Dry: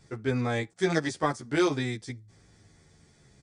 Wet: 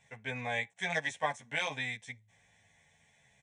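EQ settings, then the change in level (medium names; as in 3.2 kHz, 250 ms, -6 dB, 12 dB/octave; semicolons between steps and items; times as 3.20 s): distance through air 130 m; tilt EQ +4 dB/octave; static phaser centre 1.3 kHz, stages 6; 0.0 dB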